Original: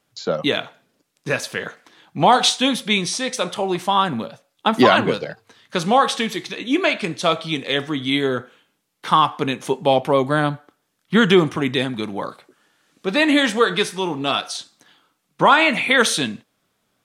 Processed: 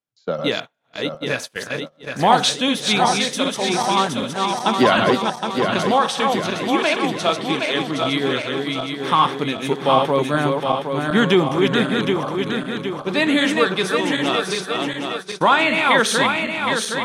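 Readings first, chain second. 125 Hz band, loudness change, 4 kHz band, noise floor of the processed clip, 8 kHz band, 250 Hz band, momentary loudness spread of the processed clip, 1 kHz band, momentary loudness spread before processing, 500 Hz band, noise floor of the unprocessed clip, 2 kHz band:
+1.0 dB, 0.0 dB, +0.5 dB, -42 dBFS, +0.5 dB, +0.5 dB, 9 LU, +1.0 dB, 14 LU, +1.0 dB, -71 dBFS, +0.5 dB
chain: regenerating reverse delay 0.383 s, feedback 72%, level -3.5 dB; gate -26 dBFS, range -22 dB; gain -2 dB

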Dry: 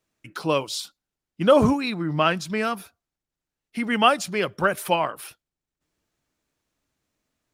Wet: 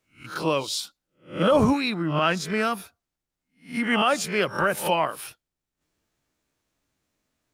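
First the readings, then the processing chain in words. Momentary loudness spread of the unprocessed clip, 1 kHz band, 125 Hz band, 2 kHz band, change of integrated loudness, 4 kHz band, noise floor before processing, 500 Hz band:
18 LU, -1.5 dB, -0.5 dB, +0.5 dB, -1.5 dB, -0.5 dB, under -85 dBFS, -2.0 dB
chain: spectral swells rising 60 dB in 0.32 s; limiter -11 dBFS, peak gain reduction 8.5 dB

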